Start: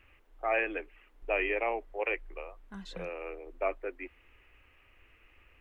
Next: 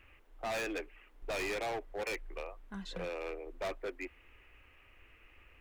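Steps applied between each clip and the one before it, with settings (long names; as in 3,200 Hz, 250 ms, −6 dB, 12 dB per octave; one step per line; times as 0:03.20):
gain into a clipping stage and back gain 35 dB
level +1 dB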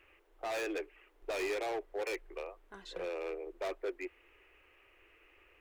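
low shelf with overshoot 280 Hz −8.5 dB, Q 3
level −2 dB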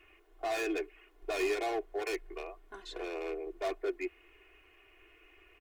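comb filter 2.8 ms, depth 88%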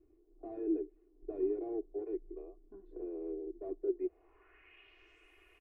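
low-pass filter sweep 310 Hz → 11,000 Hz, 0:03.85–0:05.34
level −3.5 dB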